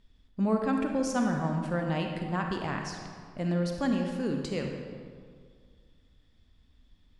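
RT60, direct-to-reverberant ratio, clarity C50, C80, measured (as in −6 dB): 2.0 s, 2.5 dB, 3.5 dB, 5.0 dB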